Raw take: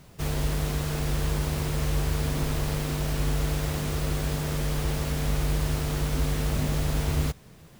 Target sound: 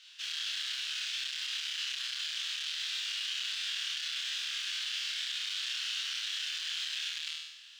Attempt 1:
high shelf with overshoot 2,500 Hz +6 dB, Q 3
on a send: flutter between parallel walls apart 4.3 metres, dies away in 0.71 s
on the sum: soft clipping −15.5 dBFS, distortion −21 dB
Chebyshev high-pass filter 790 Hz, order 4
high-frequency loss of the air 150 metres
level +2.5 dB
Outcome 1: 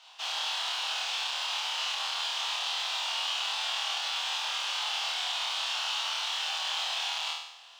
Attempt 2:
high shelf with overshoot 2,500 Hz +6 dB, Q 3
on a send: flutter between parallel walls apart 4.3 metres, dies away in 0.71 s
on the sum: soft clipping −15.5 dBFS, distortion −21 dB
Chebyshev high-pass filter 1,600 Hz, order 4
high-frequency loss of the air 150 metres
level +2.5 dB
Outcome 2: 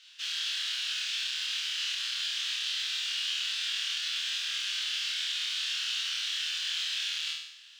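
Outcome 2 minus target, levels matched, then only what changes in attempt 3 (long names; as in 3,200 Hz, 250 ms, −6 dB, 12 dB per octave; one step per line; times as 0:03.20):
soft clipping: distortion −11 dB
change: soft clipping −25 dBFS, distortion −10 dB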